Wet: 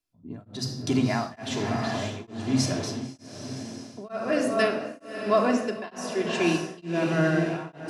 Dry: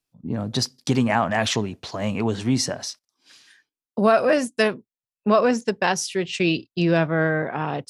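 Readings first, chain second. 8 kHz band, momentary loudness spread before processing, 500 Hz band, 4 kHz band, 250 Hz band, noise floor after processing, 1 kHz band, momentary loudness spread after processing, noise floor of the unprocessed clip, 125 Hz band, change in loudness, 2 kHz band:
-6.0 dB, 11 LU, -5.0 dB, -6.0 dB, -3.0 dB, -54 dBFS, -6.0 dB, 14 LU, under -85 dBFS, -4.0 dB, -5.0 dB, -5.5 dB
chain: on a send: echo that smears into a reverb 560 ms, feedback 46%, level -6 dB; on the sum: simulated room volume 3300 m³, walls furnished, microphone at 3.1 m; tremolo of two beating tones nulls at 1.1 Hz; trim -6 dB

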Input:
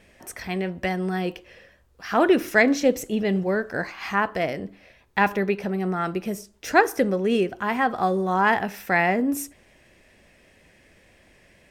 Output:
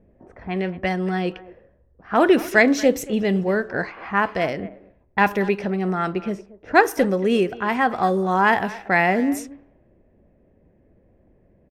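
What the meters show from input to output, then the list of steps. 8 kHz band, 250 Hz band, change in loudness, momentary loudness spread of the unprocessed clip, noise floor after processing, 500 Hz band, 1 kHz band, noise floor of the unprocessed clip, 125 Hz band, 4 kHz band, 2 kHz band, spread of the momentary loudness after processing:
0.0 dB, +2.5 dB, +2.5 dB, 12 LU, -59 dBFS, +2.5 dB, +2.5 dB, -57 dBFS, +2.5 dB, +2.0 dB, +2.5 dB, 12 LU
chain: speakerphone echo 230 ms, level -17 dB; level-controlled noise filter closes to 450 Hz, open at -19.5 dBFS; trim +2.5 dB

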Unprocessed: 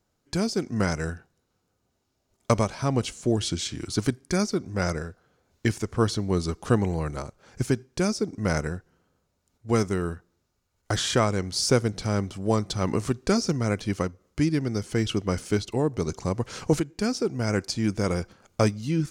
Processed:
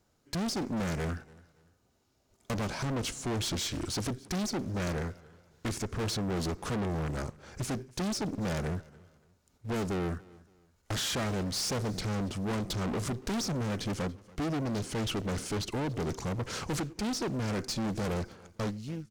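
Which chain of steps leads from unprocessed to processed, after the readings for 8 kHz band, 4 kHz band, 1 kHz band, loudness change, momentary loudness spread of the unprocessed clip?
-4.0 dB, -4.0 dB, -6.0 dB, -7.0 dB, 8 LU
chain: fade out at the end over 0.88 s; dynamic bell 230 Hz, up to +5 dB, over -35 dBFS, Q 0.83; in parallel at -5 dB: short-mantissa float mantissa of 2-bit; on the sum: valve stage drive 30 dB, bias 0.35; on a send: feedback delay 284 ms, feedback 33%, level -23 dB; on the sum: loudspeaker Doppler distortion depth 0.38 ms

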